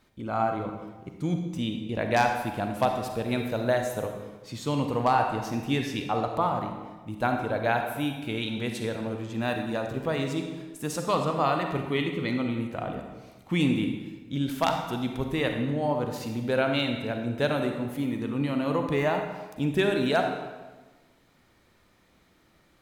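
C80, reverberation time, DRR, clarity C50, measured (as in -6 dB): 7.0 dB, 1.3 s, 4.0 dB, 5.0 dB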